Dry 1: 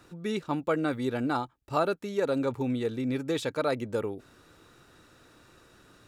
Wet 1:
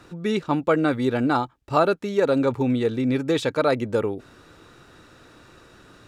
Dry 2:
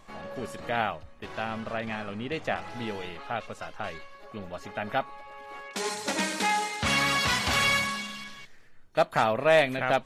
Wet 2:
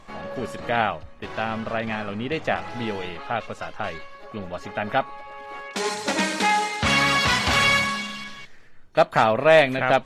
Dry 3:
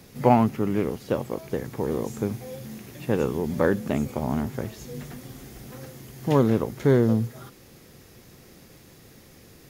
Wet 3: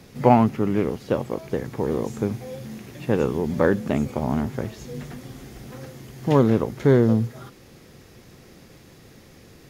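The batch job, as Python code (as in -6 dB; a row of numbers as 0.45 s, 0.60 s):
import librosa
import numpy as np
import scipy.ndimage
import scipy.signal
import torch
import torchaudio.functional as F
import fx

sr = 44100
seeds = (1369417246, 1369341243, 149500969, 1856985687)

y = fx.high_shelf(x, sr, hz=9300.0, db=-10.5)
y = y * 10.0 ** (-24 / 20.0) / np.sqrt(np.mean(np.square(y)))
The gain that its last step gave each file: +7.5 dB, +6.0 dB, +2.5 dB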